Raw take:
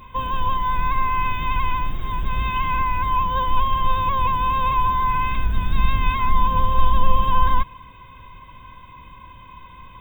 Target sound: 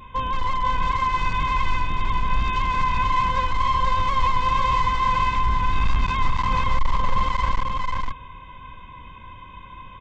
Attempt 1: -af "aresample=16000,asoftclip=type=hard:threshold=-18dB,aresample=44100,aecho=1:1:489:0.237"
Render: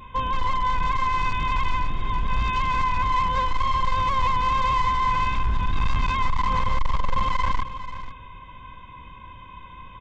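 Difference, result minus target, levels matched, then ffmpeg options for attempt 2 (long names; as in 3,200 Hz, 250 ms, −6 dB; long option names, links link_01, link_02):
echo-to-direct −9.5 dB
-af "aresample=16000,asoftclip=type=hard:threshold=-18dB,aresample=44100,aecho=1:1:489:0.708"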